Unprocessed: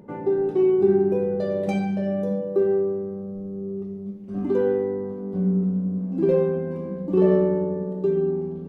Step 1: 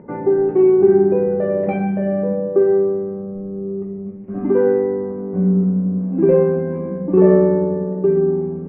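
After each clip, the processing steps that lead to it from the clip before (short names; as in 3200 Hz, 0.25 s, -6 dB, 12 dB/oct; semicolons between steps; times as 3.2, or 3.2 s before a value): steep low-pass 2300 Hz 36 dB/oct; notches 50/100/150/200 Hz; gain +6.5 dB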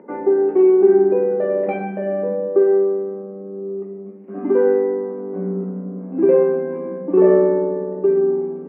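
HPF 250 Hz 24 dB/oct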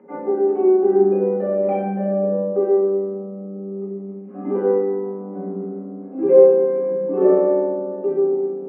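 reverb RT60 0.80 s, pre-delay 3 ms, DRR -4 dB; gain -12.5 dB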